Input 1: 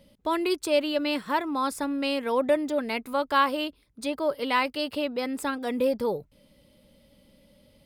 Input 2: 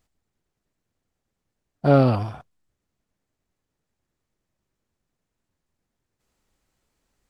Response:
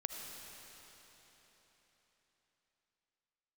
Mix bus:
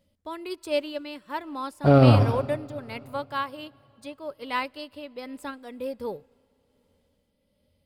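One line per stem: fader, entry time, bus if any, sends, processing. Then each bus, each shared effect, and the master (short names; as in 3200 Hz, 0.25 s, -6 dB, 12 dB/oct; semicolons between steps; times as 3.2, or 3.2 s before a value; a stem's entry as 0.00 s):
0.0 dB, 0.00 s, send -17 dB, dry
+2.5 dB, 0.00 s, send -4 dB, limiter -9 dBFS, peak gain reduction 4 dB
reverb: on, RT60 4.2 s, pre-delay 35 ms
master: tremolo 1.3 Hz, depth 36%; bell 84 Hz +13.5 dB 0.36 oct; upward expander 1.5:1, over -40 dBFS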